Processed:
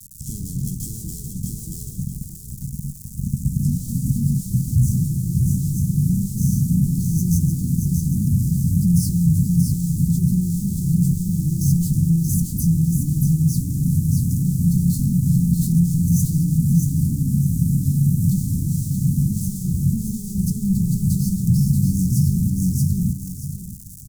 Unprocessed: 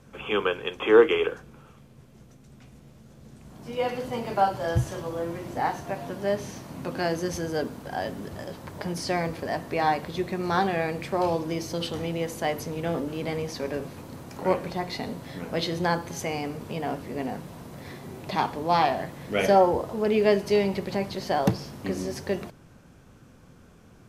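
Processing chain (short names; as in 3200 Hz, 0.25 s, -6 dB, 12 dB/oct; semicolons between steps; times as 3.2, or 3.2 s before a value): opening faded in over 0.75 s; fuzz box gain 41 dB, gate -46 dBFS; doubler 22 ms -14 dB; feedback echo 0.63 s, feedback 20%, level -4.5 dB; crackle 360/s -24 dBFS; tone controls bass +3 dB, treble -2 dB; compressor 4:1, threshold -21 dBFS, peak gain reduction 10.5 dB; inverse Chebyshev band-stop 590–2300 Hz, stop band 70 dB; dynamic EQ 180 Hz, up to +6 dB, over -39 dBFS, Q 0.92; gain +5.5 dB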